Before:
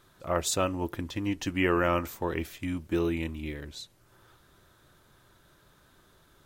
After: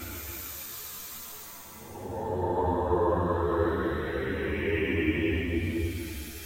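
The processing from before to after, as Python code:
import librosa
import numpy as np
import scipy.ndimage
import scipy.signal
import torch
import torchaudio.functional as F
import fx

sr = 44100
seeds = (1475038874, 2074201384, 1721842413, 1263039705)

y = fx.paulstretch(x, sr, seeds[0], factor=16.0, window_s=0.1, from_s=2.07)
y = y + 10.0 ** (-7.5 / 20.0) * np.pad(y, (int(264 * sr / 1000.0), 0))[:len(y)]
y = fx.ensemble(y, sr)
y = y * librosa.db_to_amplitude(5.0)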